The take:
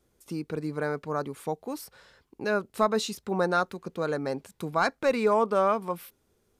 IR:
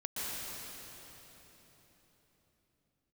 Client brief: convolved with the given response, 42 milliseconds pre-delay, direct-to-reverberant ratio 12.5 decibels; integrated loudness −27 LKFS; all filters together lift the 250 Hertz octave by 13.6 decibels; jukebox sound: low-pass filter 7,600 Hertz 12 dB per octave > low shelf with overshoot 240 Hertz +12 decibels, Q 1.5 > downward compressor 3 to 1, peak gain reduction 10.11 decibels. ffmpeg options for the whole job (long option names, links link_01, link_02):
-filter_complex "[0:a]equalizer=frequency=250:width_type=o:gain=7.5,asplit=2[link_01][link_02];[1:a]atrim=start_sample=2205,adelay=42[link_03];[link_02][link_03]afir=irnorm=-1:irlink=0,volume=-17dB[link_04];[link_01][link_04]amix=inputs=2:normalize=0,lowpass=7600,lowshelf=frequency=240:width_type=q:width=1.5:gain=12,acompressor=threshold=-26dB:ratio=3,volume=2.5dB"